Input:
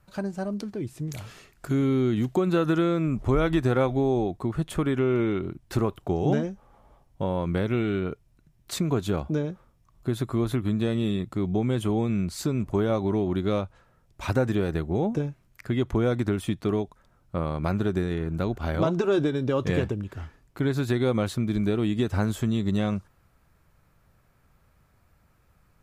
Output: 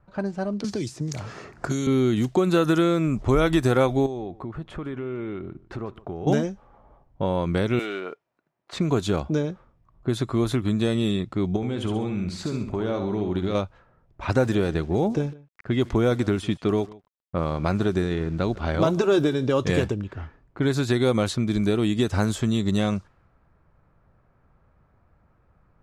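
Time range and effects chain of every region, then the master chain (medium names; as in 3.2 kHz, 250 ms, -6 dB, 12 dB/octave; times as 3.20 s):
0.64–1.87 s: high-pass 61 Hz + resonant high shelf 4.1 kHz +9.5 dB, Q 1.5 + three bands compressed up and down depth 100%
4.06–6.27 s: compression 2.5:1, threshold -36 dBFS + delay 148 ms -20 dB
7.79–8.73 s: block-companded coder 7-bit + high-pass 510 Hz
11.56–13.55 s: compression 5:1, threshold -26 dBFS + feedback delay 66 ms, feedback 39%, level -7 dB
14.24–19.51 s: treble shelf 10 kHz -10 dB + small samples zeroed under -50.5 dBFS + delay 152 ms -21.5 dB
whole clip: level-controlled noise filter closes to 1.3 kHz, open at -19 dBFS; tone controls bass -2 dB, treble +8 dB; trim +3.5 dB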